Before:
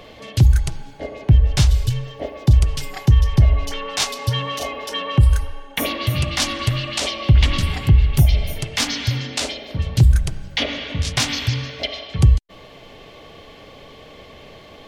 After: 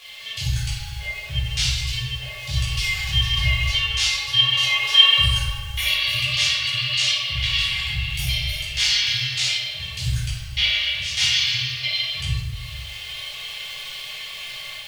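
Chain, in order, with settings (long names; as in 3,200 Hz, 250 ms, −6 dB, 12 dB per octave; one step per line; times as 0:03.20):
meter weighting curve D
surface crackle 320 per second −29 dBFS
guitar amp tone stack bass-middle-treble 10-0-10
automatic gain control gain up to 6.5 dB
harmonic and percussive parts rebalanced percussive −12 dB
convolution reverb RT60 0.95 s, pre-delay 8 ms, DRR −8 dB
level −6.5 dB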